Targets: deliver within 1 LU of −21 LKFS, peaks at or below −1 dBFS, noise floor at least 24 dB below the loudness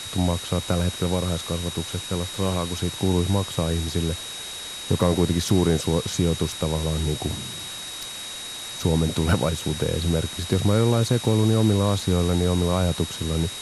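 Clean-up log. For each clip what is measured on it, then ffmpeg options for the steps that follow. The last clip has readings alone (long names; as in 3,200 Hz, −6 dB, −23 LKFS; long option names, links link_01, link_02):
interfering tone 3,800 Hz; level of the tone −35 dBFS; background noise floor −35 dBFS; target noise floor −48 dBFS; integrated loudness −24.0 LKFS; sample peak −5.5 dBFS; target loudness −21.0 LKFS
→ -af "bandreject=frequency=3800:width=30"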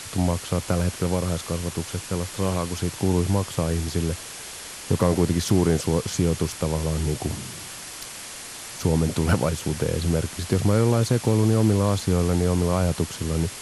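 interfering tone none found; background noise floor −38 dBFS; target noise floor −48 dBFS
→ -af "afftdn=noise_reduction=10:noise_floor=-38"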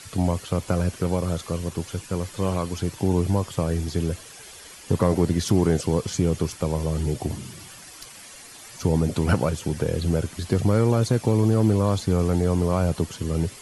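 background noise floor −44 dBFS; target noise floor −48 dBFS
→ -af "afftdn=noise_reduction=6:noise_floor=-44"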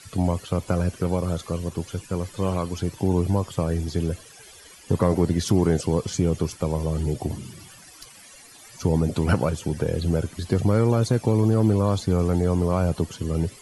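background noise floor −48 dBFS; integrated loudness −24.0 LKFS; sample peak −5.5 dBFS; target loudness −21.0 LKFS
→ -af "volume=3dB"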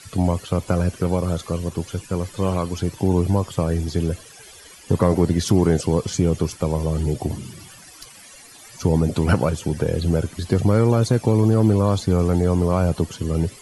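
integrated loudness −21.0 LKFS; sample peak −2.5 dBFS; background noise floor −45 dBFS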